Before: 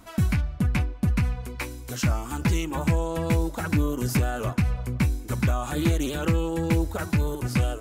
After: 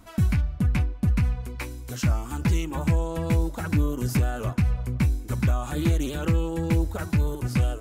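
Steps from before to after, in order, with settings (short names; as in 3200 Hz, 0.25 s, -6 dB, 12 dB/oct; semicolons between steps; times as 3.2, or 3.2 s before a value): low shelf 180 Hz +5.5 dB; gain -3 dB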